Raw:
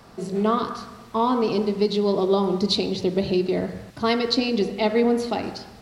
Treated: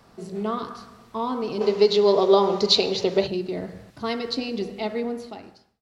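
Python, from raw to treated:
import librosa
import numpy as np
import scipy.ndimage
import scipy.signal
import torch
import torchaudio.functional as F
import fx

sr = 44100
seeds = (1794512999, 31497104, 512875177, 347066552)

y = fx.fade_out_tail(x, sr, length_s=1.02)
y = fx.spec_box(y, sr, start_s=1.61, length_s=1.66, low_hz=380.0, high_hz=7400.0, gain_db=11)
y = y * librosa.db_to_amplitude(-6.0)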